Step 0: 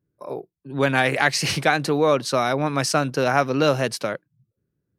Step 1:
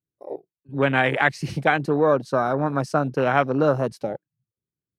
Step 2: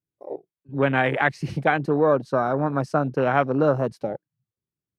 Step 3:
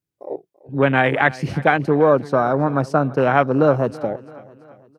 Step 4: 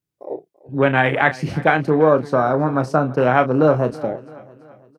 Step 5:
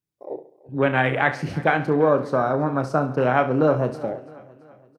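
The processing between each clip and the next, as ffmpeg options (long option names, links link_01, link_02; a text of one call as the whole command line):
ffmpeg -i in.wav -af "afwtdn=0.0631" out.wav
ffmpeg -i in.wav -af "highshelf=frequency=2800:gain=-8" out.wav
ffmpeg -i in.wav -af "aecho=1:1:335|670|1005|1340:0.1|0.051|0.026|0.0133,volume=4.5dB" out.wav
ffmpeg -i in.wav -filter_complex "[0:a]asplit=2[link_01][link_02];[link_02]adelay=32,volume=-10dB[link_03];[link_01][link_03]amix=inputs=2:normalize=0" out.wav
ffmpeg -i in.wav -af "aecho=1:1:69|138|207|276:0.2|0.0878|0.0386|0.017,volume=-4dB" out.wav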